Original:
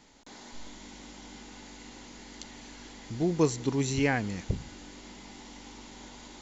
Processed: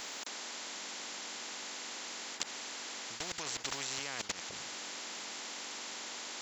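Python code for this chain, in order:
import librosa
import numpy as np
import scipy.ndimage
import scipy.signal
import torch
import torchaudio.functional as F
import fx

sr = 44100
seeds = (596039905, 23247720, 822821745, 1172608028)

y = scipy.signal.sosfilt(scipy.signal.butter(2, 680.0, 'highpass', fs=sr, output='sos'), x)
y = fx.high_shelf(y, sr, hz=5900.0, db=4.5)
y = fx.level_steps(y, sr, step_db=22)
y = fx.spectral_comp(y, sr, ratio=4.0)
y = y * librosa.db_to_amplitude(9.5)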